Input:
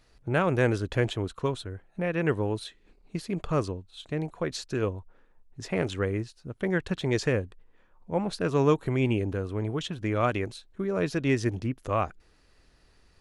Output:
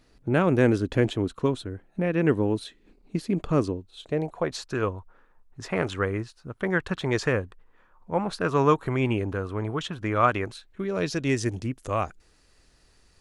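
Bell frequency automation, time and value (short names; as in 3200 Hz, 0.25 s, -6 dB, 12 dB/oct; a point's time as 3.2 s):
bell +8.5 dB 1.2 oct
3.63 s 260 Hz
4.75 s 1200 Hz
10.48 s 1200 Hz
11.26 s 7900 Hz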